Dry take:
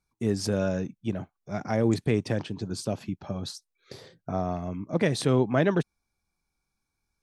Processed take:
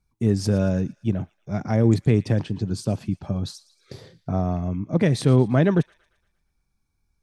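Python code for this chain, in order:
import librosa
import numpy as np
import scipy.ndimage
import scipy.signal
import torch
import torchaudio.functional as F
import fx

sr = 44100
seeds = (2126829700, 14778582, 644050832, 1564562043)

y = fx.low_shelf(x, sr, hz=220.0, db=12.0)
y = fx.echo_wet_highpass(y, sr, ms=115, feedback_pct=50, hz=1900.0, wet_db=-18)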